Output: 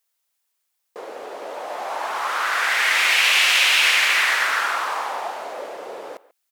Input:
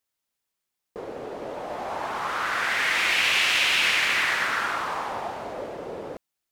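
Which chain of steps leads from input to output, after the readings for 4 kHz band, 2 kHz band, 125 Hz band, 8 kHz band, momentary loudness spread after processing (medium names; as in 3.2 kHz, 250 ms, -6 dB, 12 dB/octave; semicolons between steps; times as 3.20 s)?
+5.5 dB, +5.0 dB, under -15 dB, +7.5 dB, 21 LU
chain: high-pass 540 Hz 12 dB/octave; treble shelf 7 kHz +5.5 dB; speakerphone echo 140 ms, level -19 dB; trim +4.5 dB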